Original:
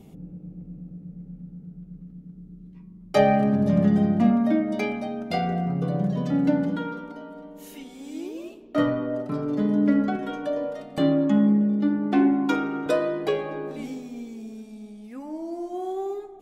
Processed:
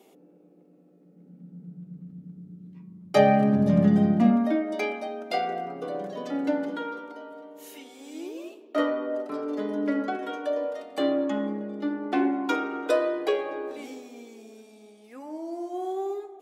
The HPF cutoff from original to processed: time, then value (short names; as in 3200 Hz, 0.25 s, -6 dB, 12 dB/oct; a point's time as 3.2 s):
HPF 24 dB/oct
0.96 s 350 Hz
2.13 s 92 Hz
4.07 s 92 Hz
4.57 s 320 Hz